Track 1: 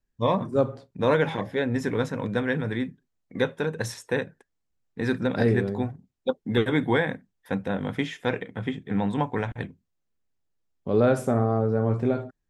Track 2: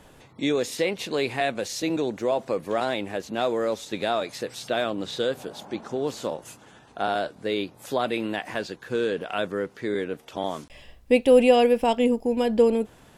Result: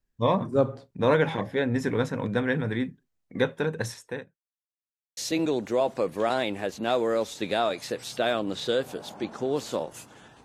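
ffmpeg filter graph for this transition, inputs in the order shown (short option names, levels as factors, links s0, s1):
-filter_complex "[0:a]apad=whole_dur=10.44,atrim=end=10.44,asplit=2[s0][s1];[s0]atrim=end=4.37,asetpts=PTS-STARTPTS,afade=t=out:st=3.77:d=0.6[s2];[s1]atrim=start=4.37:end=5.17,asetpts=PTS-STARTPTS,volume=0[s3];[1:a]atrim=start=1.68:end=6.95,asetpts=PTS-STARTPTS,afade=t=in:d=0.004:c=hsin[s4];[s2][s3][s4]concat=n=3:v=0:a=1"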